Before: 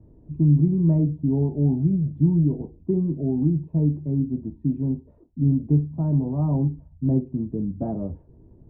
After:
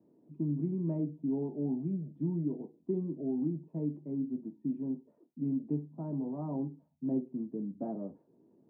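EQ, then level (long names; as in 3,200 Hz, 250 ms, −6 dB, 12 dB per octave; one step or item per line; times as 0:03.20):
high-pass filter 200 Hz 24 dB per octave
−8.0 dB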